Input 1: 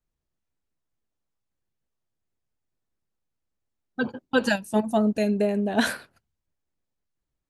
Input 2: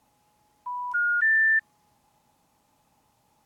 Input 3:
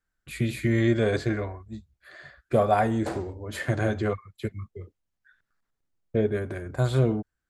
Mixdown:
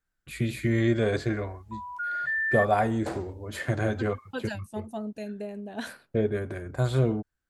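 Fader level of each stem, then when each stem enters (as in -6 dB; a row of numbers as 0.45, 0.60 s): -13.0, -7.0, -1.5 dB; 0.00, 1.05, 0.00 s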